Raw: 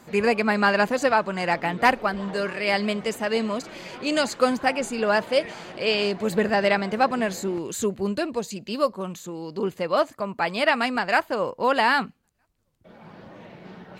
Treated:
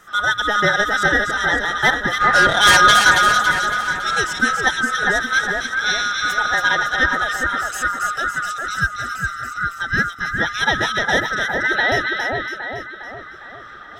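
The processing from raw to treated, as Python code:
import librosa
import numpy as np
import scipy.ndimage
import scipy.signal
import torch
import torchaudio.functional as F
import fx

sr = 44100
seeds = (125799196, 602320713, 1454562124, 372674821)

y = fx.band_swap(x, sr, width_hz=1000)
y = fx.fold_sine(y, sr, drive_db=9, ceiling_db=-9.5, at=(2.2, 3.11), fade=0.02)
y = fx.transient(y, sr, attack_db=3, sustain_db=-4, at=(4.46, 4.88))
y = fx.cheby1_bandpass(y, sr, low_hz=240.0, high_hz=4300.0, order=4, at=(11.35, 11.92))
y = fx.echo_split(y, sr, split_hz=2100.0, low_ms=407, high_ms=279, feedback_pct=52, wet_db=-3.5)
y = F.gain(torch.from_numpy(y), 2.0).numpy()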